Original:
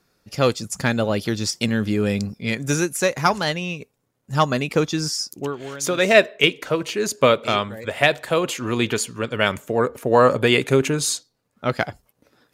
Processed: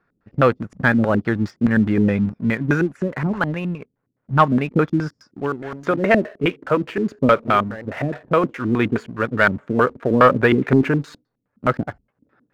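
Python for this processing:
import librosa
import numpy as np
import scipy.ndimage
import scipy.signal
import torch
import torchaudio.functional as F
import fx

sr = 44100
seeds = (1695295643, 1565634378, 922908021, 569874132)

y = fx.filter_lfo_lowpass(x, sr, shape='square', hz=4.8, low_hz=260.0, high_hz=1600.0, q=2.1)
y = fx.leveller(y, sr, passes=1)
y = y * 10.0 ** (-1.5 / 20.0)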